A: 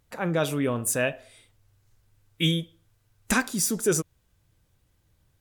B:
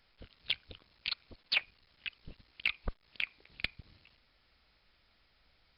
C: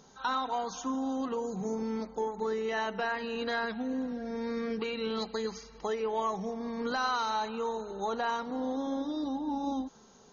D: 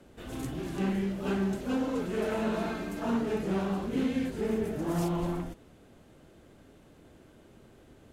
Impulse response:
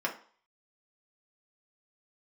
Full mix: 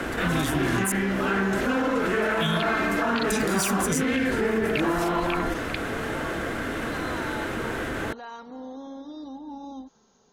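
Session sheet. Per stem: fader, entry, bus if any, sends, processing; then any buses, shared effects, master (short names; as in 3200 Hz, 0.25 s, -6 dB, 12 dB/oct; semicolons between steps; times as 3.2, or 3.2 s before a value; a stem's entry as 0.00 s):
+3.0 dB, 0.00 s, muted 0.92–1.66, no send, band shelf 800 Hz -16 dB 2.9 oct
+3.0 dB, 2.10 s, no send, dry
-5.0 dB, 0.00 s, no send, limiter -26.5 dBFS, peak gain reduction 6 dB
+2.0 dB, 0.00 s, send -12.5 dB, bell 1600 Hz +11 dB 1.2 oct; fast leveller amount 70%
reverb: on, RT60 0.45 s, pre-delay 3 ms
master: limiter -15 dBFS, peak gain reduction 8.5 dB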